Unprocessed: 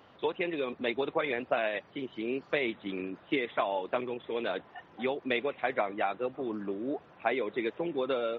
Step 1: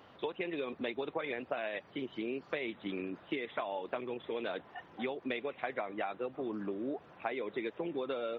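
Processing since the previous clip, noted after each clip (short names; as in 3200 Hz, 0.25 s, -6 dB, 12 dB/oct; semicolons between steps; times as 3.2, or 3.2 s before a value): compressor 4:1, threshold -34 dBFS, peak gain reduction 9.5 dB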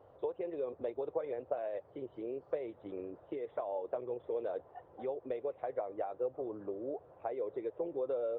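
EQ curve 110 Hz 0 dB, 210 Hz -16 dB, 510 Hz +3 dB, 2400 Hz -23 dB; gain +1.5 dB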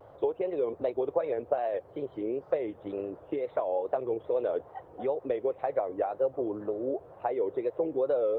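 wow and flutter 120 cents; gain +8 dB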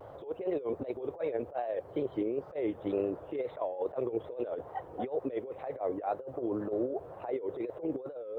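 negative-ratio compressor -33 dBFS, ratio -0.5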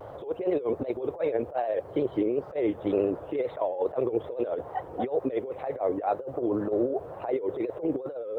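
vibrato 14 Hz 48 cents; gain +6 dB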